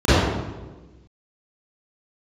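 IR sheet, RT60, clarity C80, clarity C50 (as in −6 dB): 1.3 s, −2.0 dB, −7.0 dB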